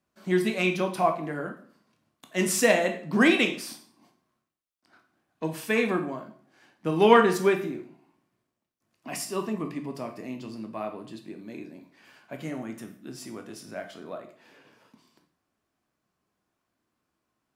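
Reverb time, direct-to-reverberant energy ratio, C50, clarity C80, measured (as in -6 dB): 0.50 s, 4.0 dB, 10.0 dB, 14.5 dB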